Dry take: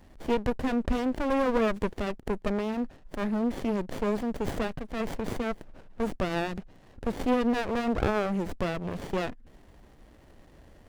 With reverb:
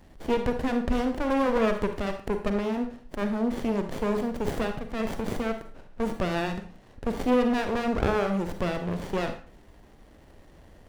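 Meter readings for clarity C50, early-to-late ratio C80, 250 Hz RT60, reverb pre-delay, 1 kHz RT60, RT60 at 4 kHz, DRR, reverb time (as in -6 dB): 8.5 dB, 12.5 dB, 0.45 s, 37 ms, 0.45 s, 0.40 s, 6.5 dB, 0.45 s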